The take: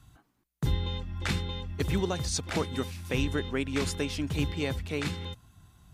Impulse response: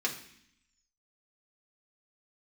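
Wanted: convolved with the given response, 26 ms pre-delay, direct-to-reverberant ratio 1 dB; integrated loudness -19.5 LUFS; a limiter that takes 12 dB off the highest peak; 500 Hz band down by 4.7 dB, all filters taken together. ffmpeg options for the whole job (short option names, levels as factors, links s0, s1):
-filter_complex "[0:a]equalizer=f=500:t=o:g=-6,alimiter=level_in=1.78:limit=0.0631:level=0:latency=1,volume=0.562,asplit=2[s0][s1];[1:a]atrim=start_sample=2205,adelay=26[s2];[s1][s2]afir=irnorm=-1:irlink=0,volume=0.447[s3];[s0][s3]amix=inputs=2:normalize=0,volume=7.5"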